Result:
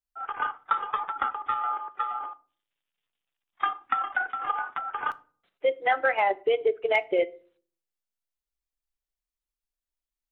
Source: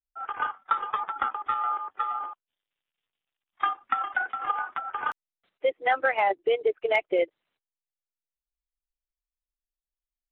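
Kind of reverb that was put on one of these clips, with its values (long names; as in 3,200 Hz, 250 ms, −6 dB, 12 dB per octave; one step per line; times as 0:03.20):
rectangular room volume 380 cubic metres, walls furnished, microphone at 0.32 metres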